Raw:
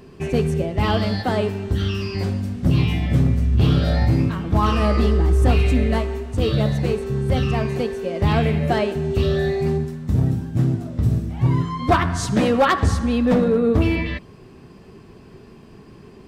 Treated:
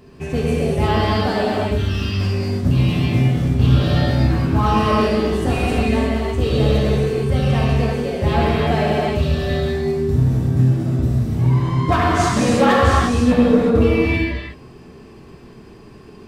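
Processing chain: non-linear reverb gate 0.38 s flat, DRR -5.5 dB; gain -3 dB

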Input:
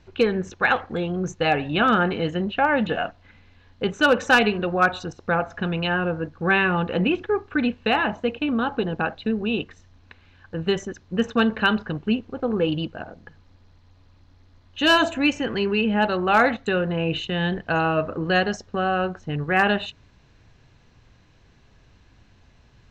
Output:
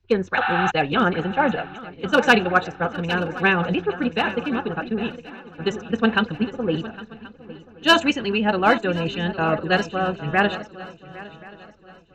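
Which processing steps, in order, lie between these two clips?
time stretch by phase-locked vocoder 0.53×; spectral repair 0.43–0.68, 720–4800 Hz before; on a send: swung echo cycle 1.08 s, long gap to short 3:1, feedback 51%, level -12 dB; on the sum: three-band expander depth 70%; gain +1 dB

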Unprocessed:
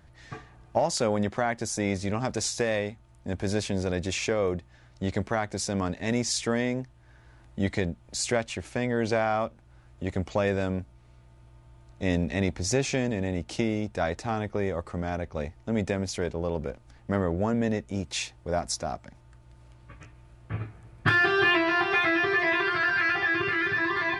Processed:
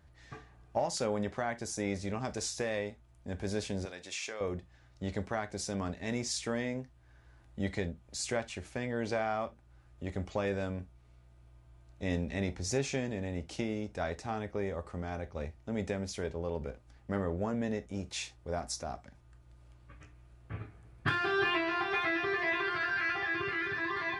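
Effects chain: 3.85–4.41 HPF 1300 Hz 6 dB/oct; non-linear reverb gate 90 ms falling, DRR 9.5 dB; gain -7.5 dB

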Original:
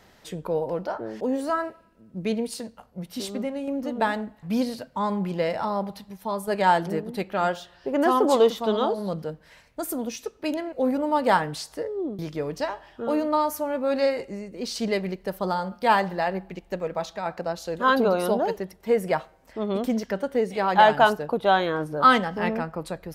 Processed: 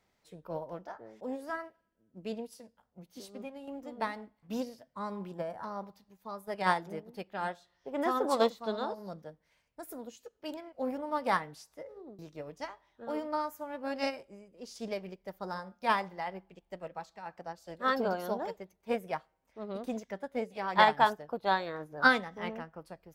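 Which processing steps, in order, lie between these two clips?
formant shift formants +2 st; spectral gain 5.32–5.64, 1900–6800 Hz -11 dB; upward expander 1.5:1, over -40 dBFS; gain -6 dB

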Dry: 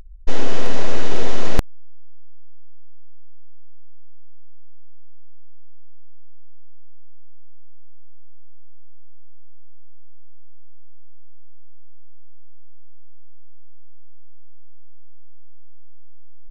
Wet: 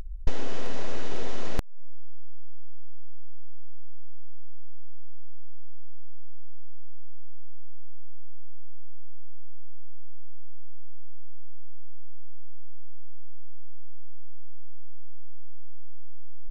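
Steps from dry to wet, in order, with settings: compressor 16:1, threshold -19 dBFS, peak gain reduction 15 dB; gain +5 dB

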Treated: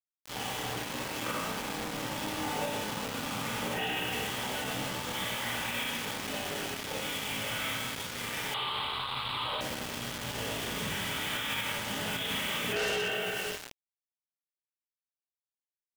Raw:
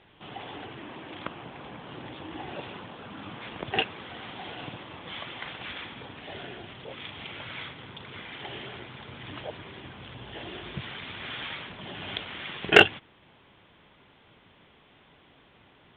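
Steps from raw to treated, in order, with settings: notches 50/100/150 Hz; narrowing echo 0.153 s, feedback 62%, band-pass 2700 Hz, level -21 dB; chorus 0.22 Hz, delay 15.5 ms, depth 3.8 ms; Schroeder reverb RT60 1.4 s, combs from 26 ms, DRR -9 dB; hard clip -16 dBFS, distortion -6 dB; notch comb 350 Hz; bit-crush 6-bit; 8.54–9.61 EQ curve 120 Hz 0 dB, 220 Hz -9 dB, 340 Hz -4 dB, 620 Hz -3 dB, 1100 Hz +14 dB, 1700 Hz -3 dB, 3900 Hz +11 dB, 6000 Hz -25 dB, 8700 Hz -9 dB, 13000 Hz -13 dB; limiter -24.5 dBFS, peak gain reduction 11.5 dB

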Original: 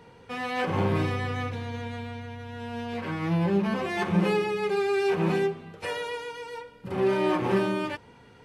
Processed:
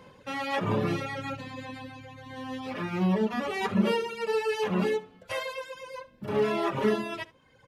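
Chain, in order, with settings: varispeed +10%; echo 70 ms -10 dB; reverb removal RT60 1.2 s

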